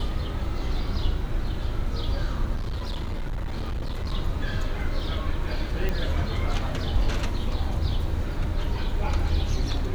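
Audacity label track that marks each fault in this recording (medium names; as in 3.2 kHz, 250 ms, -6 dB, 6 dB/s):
2.550000	4.140000	clipped -25.5 dBFS
5.890000	5.890000	pop -15 dBFS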